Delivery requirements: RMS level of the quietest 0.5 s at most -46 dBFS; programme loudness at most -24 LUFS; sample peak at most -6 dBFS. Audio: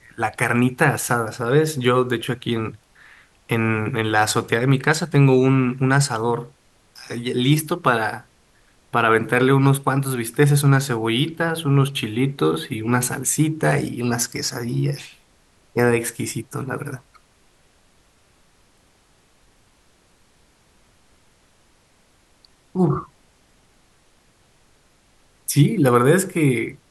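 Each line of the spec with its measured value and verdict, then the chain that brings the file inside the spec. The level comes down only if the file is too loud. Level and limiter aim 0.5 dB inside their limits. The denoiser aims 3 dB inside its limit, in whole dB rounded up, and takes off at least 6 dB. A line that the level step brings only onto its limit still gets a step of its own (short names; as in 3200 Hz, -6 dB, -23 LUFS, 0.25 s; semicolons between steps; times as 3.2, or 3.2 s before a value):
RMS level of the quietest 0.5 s -58 dBFS: OK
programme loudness -20.0 LUFS: fail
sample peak -3.0 dBFS: fail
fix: gain -4.5 dB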